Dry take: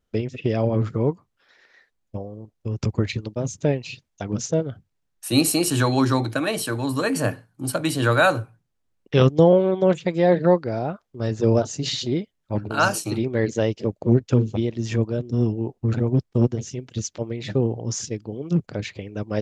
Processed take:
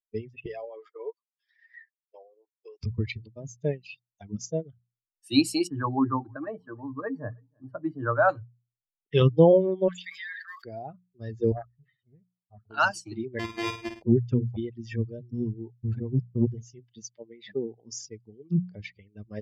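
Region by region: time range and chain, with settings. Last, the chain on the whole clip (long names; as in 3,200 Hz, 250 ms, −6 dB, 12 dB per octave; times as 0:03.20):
0:00.46–0:02.80: inverse Chebyshev high-pass filter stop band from 200 Hz + high-shelf EQ 3,600 Hz +7.5 dB + multiband upward and downward compressor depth 70%
0:05.67–0:08.29: drawn EQ curve 1,300 Hz 0 dB, 2,600 Hz −17 dB, 11,000 Hz −28 dB + repeating echo 317 ms, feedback 40%, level −18 dB
0:09.88–0:10.65: one scale factor per block 7 bits + Chebyshev high-pass with heavy ripple 1,100 Hz, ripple 3 dB + envelope flattener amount 100%
0:11.52–0:12.70: transistor ladder low-pass 1,600 Hz, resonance 70% + comb filter 1.6 ms, depth 75% + highs frequency-modulated by the lows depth 0.66 ms
0:13.39–0:14.02: samples sorted by size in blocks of 128 samples + output level in coarse steps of 11 dB + flutter between parallel walls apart 9.1 metres, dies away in 0.81 s
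0:16.94–0:17.93: high-pass filter 180 Hz + high-shelf EQ 8,500 Hz −7 dB
whole clip: spectral dynamics exaggerated over time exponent 2; low-pass filter 5,300 Hz 12 dB per octave; mains-hum notches 60/120/180 Hz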